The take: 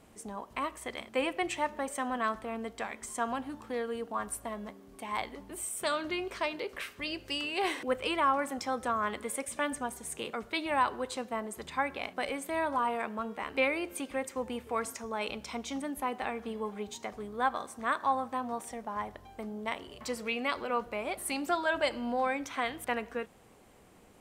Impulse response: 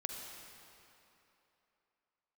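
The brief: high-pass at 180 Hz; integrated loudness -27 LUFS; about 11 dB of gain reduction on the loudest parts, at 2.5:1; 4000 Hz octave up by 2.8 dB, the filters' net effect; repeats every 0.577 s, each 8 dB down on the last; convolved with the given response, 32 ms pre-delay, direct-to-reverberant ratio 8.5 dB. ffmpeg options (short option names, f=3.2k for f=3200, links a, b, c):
-filter_complex "[0:a]highpass=180,equalizer=f=4k:t=o:g=4,acompressor=threshold=-40dB:ratio=2.5,aecho=1:1:577|1154|1731|2308|2885:0.398|0.159|0.0637|0.0255|0.0102,asplit=2[a][b];[1:a]atrim=start_sample=2205,adelay=32[c];[b][c]afir=irnorm=-1:irlink=0,volume=-8.5dB[d];[a][d]amix=inputs=2:normalize=0,volume=13dB"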